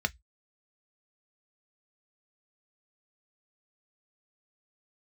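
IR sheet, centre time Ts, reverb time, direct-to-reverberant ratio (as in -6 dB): 3 ms, 0.10 s, 9.0 dB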